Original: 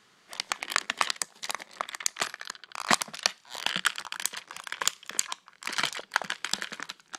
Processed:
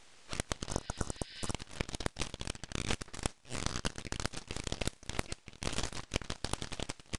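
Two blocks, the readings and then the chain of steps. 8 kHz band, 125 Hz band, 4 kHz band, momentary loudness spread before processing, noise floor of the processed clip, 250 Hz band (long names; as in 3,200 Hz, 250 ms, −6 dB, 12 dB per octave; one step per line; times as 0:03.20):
−9.5 dB, +12.5 dB, −10.0 dB, 11 LU, −61 dBFS, +3.5 dB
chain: full-wave rectification
downsampling to 22,050 Hz
healed spectral selection 0:00.71–0:01.49, 1,500–5,400 Hz before
downward compressor 5 to 1, threshold −37 dBFS, peak gain reduction 18.5 dB
level +5.5 dB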